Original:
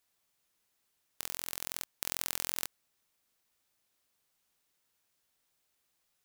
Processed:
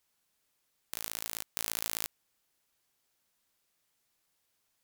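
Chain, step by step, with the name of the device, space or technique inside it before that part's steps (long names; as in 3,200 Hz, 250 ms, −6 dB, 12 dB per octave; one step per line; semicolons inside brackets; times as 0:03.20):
nightcore (speed change +29%)
level +2 dB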